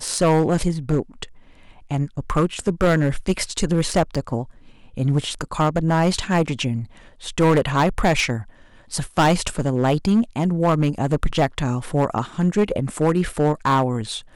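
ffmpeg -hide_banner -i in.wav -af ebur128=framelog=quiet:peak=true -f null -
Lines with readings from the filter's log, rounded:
Integrated loudness:
  I:         -21.2 LUFS
  Threshold: -31.6 LUFS
Loudness range:
  LRA:         2.2 LU
  Threshold: -41.6 LUFS
  LRA low:   -22.9 LUFS
  LRA high:  -20.7 LUFS
True peak:
  Peak:      -10.2 dBFS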